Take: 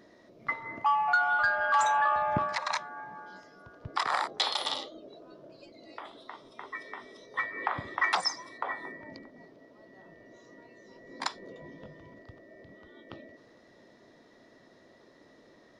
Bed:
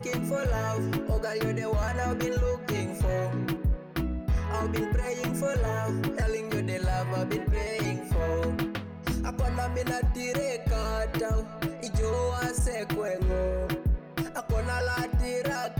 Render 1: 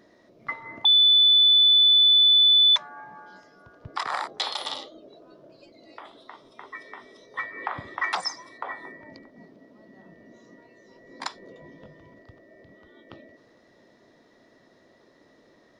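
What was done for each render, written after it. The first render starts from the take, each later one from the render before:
0:00.85–0:02.76: beep over 3,490 Hz −13.5 dBFS
0:09.37–0:10.56: parametric band 210 Hz +10 dB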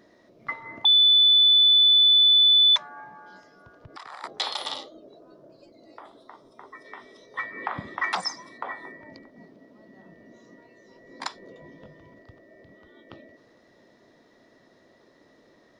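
0:03.08–0:04.24: downward compressor 3 to 1, threshold −42 dBFS
0:04.81–0:06.84: parametric band 2,800 Hz −5.5 dB → −13.5 dB 1.3 octaves
0:07.45–0:08.70: parametric band 200 Hz +9 dB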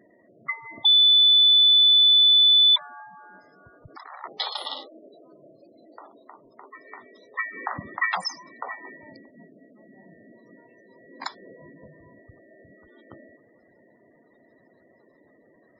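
gate on every frequency bin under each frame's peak −15 dB strong
dynamic equaliser 1,900 Hz, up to +4 dB, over −34 dBFS, Q 1.5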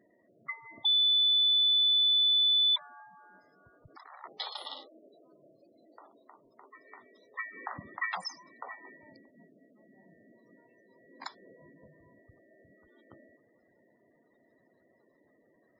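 level −9 dB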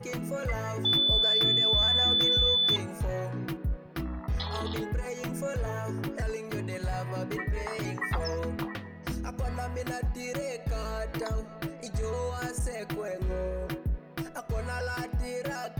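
mix in bed −4.5 dB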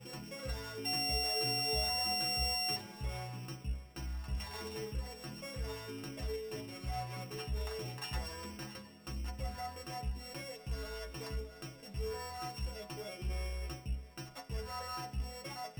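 samples sorted by size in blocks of 16 samples
stiff-string resonator 64 Hz, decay 0.44 s, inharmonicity 0.008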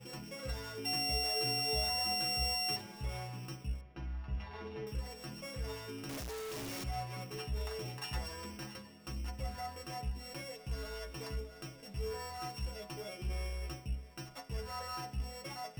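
0:03.81–0:04.87: high-frequency loss of the air 290 metres
0:06.09–0:06.84: sign of each sample alone

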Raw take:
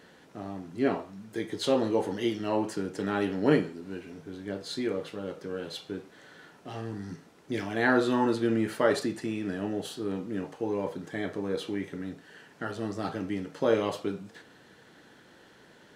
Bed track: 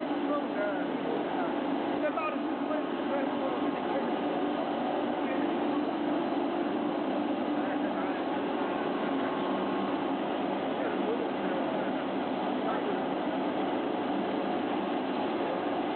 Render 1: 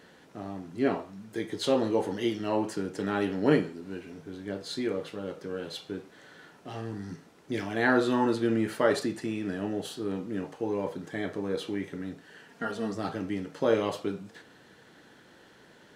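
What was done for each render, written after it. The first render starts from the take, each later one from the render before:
0:12.48–0:12.95: comb filter 4.3 ms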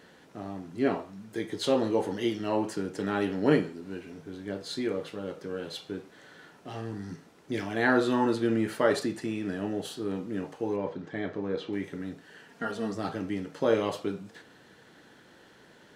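0:10.76–0:11.73: high-frequency loss of the air 150 metres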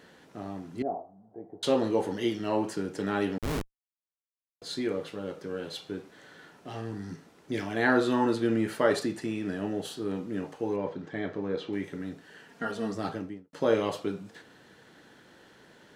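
0:00.82–0:01.63: transistor ladder low-pass 770 Hz, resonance 80%
0:03.38–0:04.62: comparator with hysteresis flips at −23 dBFS
0:13.07–0:13.53: fade out and dull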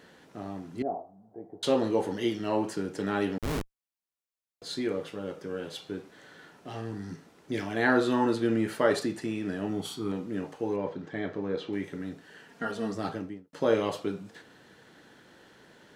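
0:05.02–0:05.81: notch filter 4,100 Hz, Q 11
0:09.69–0:10.12: comb filter 0.9 ms, depth 64%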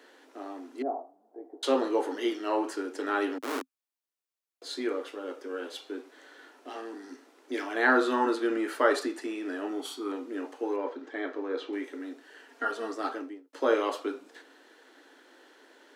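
Chebyshev high-pass filter 260 Hz, order 6
dynamic equaliser 1,300 Hz, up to +6 dB, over −49 dBFS, Q 1.9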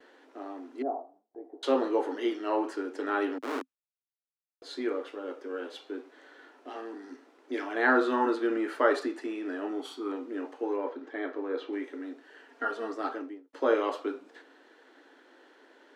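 noise gate with hold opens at −49 dBFS
low-pass filter 2,700 Hz 6 dB per octave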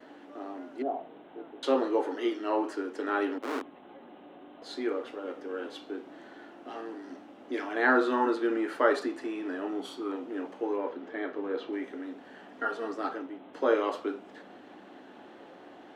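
mix in bed track −20 dB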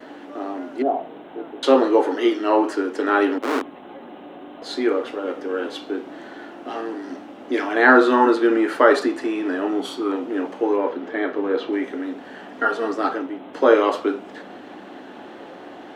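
level +11 dB
brickwall limiter −2 dBFS, peak gain reduction 2 dB

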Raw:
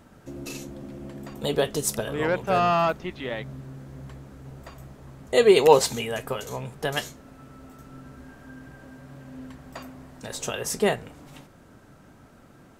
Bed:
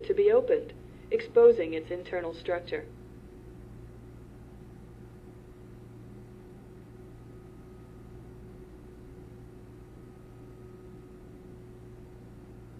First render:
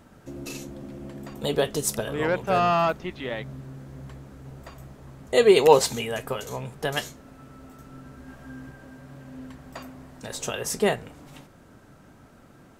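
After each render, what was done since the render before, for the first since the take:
0:08.26–0:08.71: double-tracking delay 15 ms −3.5 dB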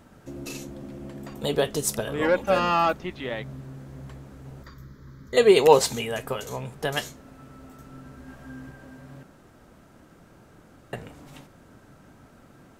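0:02.21–0:02.94: comb filter 3.6 ms, depth 76%
0:04.63–0:05.37: phaser with its sweep stopped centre 2,700 Hz, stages 6
0:09.23–0:10.93: fill with room tone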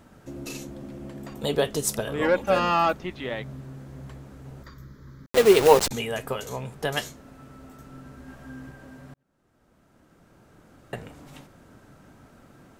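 0:05.26–0:05.91: hold until the input has moved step −21.5 dBFS
0:09.14–0:10.94: fade in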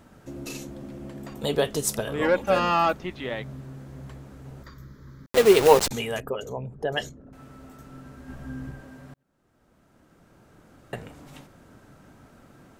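0:06.20–0:07.33: spectral envelope exaggerated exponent 2
0:08.29–0:08.81: low-shelf EQ 240 Hz +9 dB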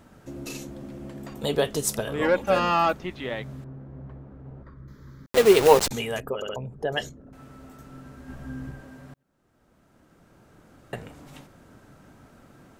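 0:03.64–0:04.88: Bessel low-pass filter 990 Hz
0:06.35: stutter in place 0.07 s, 3 plays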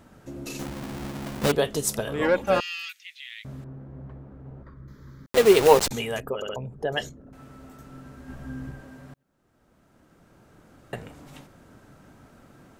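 0:00.59–0:01.52: each half-wave held at its own peak
0:02.60–0:03.45: Butterworth high-pass 2,100 Hz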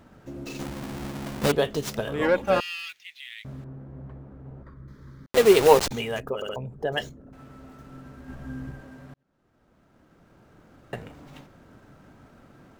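running median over 5 samples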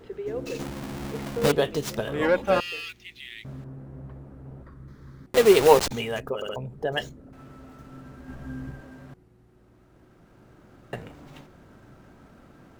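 mix in bed −10.5 dB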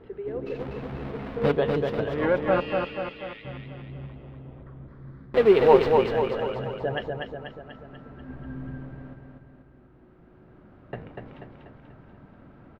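high-frequency loss of the air 410 metres
on a send: repeating echo 243 ms, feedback 54%, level −4 dB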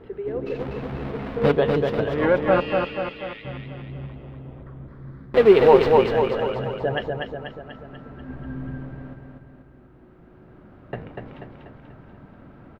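level +4 dB
brickwall limiter −3 dBFS, peak gain reduction 2.5 dB

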